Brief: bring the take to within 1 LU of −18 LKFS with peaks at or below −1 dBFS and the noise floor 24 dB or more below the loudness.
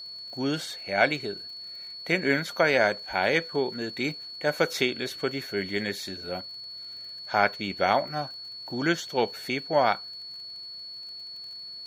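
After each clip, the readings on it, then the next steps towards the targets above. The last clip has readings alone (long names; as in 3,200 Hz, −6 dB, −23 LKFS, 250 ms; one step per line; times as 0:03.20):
crackle rate 39 per second; interfering tone 4,400 Hz; level of the tone −38 dBFS; integrated loudness −28.5 LKFS; sample peak −6.0 dBFS; target loudness −18.0 LKFS
→ click removal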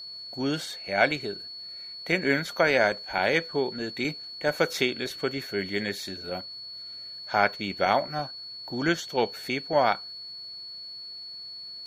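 crackle rate 0.17 per second; interfering tone 4,400 Hz; level of the tone −38 dBFS
→ notch filter 4,400 Hz, Q 30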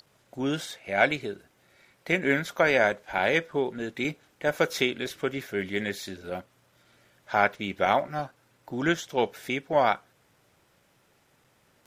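interfering tone none found; integrated loudness −27.5 LKFS; sample peak −6.0 dBFS; target loudness −18.0 LKFS
→ level +9.5 dB
brickwall limiter −1 dBFS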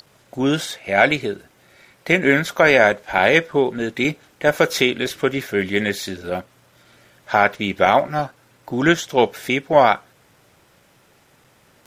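integrated loudness −18.5 LKFS; sample peak −1.0 dBFS; background noise floor −56 dBFS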